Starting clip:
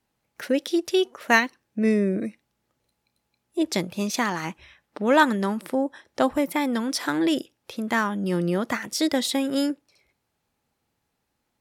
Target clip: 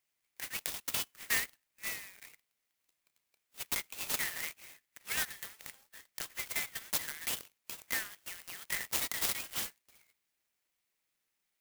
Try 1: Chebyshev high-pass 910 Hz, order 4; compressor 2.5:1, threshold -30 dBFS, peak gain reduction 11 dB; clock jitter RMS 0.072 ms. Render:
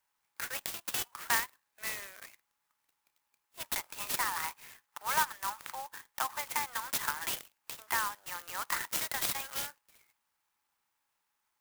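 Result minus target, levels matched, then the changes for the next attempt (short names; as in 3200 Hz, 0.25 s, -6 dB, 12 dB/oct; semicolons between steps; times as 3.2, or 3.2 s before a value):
1000 Hz band +11.5 dB
change: Chebyshev high-pass 2000 Hz, order 4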